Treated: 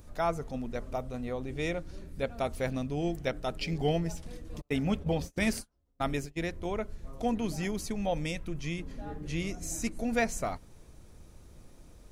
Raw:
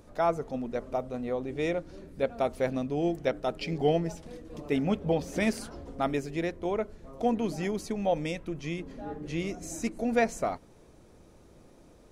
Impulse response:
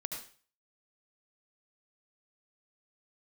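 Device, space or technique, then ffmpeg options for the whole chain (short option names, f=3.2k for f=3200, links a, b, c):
smiley-face EQ: -filter_complex "[0:a]asettb=1/sr,asplit=3[a][b][c];[a]atrim=end=4.614[d];[b]atrim=start=4.61:end=6.38,asetpts=PTS-STARTPTS,afade=t=in:d=0.004:c=qsin,afade=t=out:st=1.766:d=0.004:c=qsin,agate=range=-36dB:threshold=-34dB:ratio=16:detection=peak[e];[c]atrim=start=6.376[f];[d][e]acrossfade=d=0.004:c1=hsin:c2=qsin[g];[g][f]acrossfade=d=0.004:c1=qsin:c2=hsin,lowshelf=f=110:g=8.5,equalizer=f=430:t=o:w=2.6:g=-6.5,highshelf=f=8.9k:g=7,volume=1dB"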